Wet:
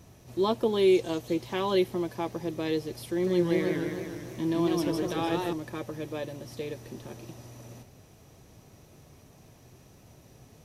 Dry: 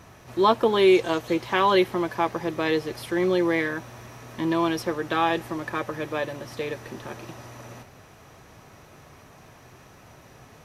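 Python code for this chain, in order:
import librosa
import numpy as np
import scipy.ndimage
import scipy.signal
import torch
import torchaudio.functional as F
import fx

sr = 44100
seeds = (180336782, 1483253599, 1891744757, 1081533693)

y = fx.peak_eq(x, sr, hz=1400.0, db=-13.0, octaves=2.1)
y = fx.echo_warbled(y, sr, ms=152, feedback_pct=62, rate_hz=2.8, cents=169, wet_db=-3.0, at=(3.09, 5.53))
y = F.gain(torch.from_numpy(y), -1.5).numpy()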